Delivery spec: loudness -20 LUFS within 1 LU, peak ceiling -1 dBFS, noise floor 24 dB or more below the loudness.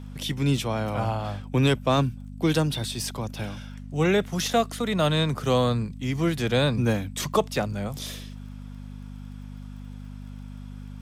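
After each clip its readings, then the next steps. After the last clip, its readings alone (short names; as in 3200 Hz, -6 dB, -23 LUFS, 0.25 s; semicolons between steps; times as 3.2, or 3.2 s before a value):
ticks 24/s; hum 50 Hz; harmonics up to 250 Hz; hum level -37 dBFS; loudness -25.5 LUFS; peak -10.0 dBFS; loudness target -20.0 LUFS
-> de-click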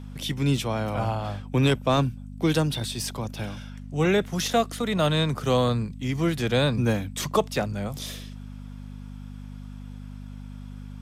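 ticks 0/s; hum 50 Hz; harmonics up to 250 Hz; hum level -37 dBFS
-> de-hum 50 Hz, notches 5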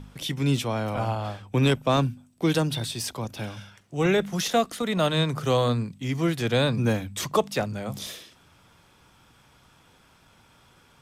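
hum none; loudness -26.0 LUFS; peak -10.0 dBFS; loudness target -20.0 LUFS
-> gain +6 dB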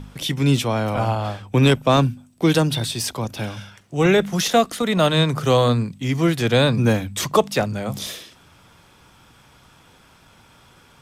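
loudness -20.0 LUFS; peak -4.0 dBFS; noise floor -52 dBFS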